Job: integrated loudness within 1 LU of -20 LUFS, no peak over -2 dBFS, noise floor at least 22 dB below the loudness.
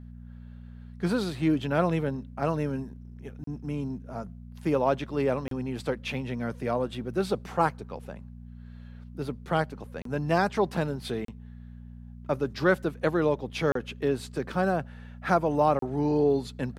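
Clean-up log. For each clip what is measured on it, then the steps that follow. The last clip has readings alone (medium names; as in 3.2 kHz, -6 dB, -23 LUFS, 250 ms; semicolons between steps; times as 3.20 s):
dropouts 6; longest dropout 33 ms; hum 60 Hz; highest harmonic 240 Hz; hum level -41 dBFS; loudness -28.5 LUFS; peak level -9.0 dBFS; loudness target -20.0 LUFS
-> interpolate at 3.44/5.48/10.02/11.25/13.72/15.79 s, 33 ms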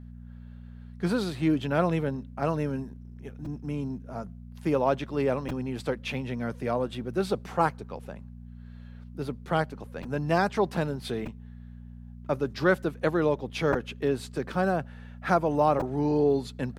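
dropouts 0; hum 60 Hz; highest harmonic 240 Hz; hum level -41 dBFS
-> de-hum 60 Hz, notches 4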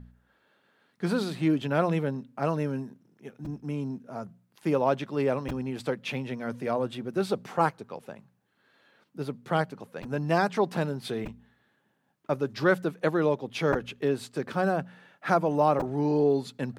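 hum not found; loudness -28.5 LUFS; peak level -9.5 dBFS; loudness target -20.0 LUFS
-> trim +8.5 dB; peak limiter -2 dBFS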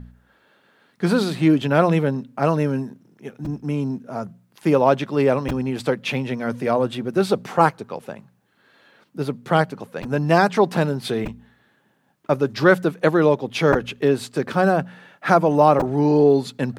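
loudness -20.0 LUFS; peak level -2.0 dBFS; noise floor -62 dBFS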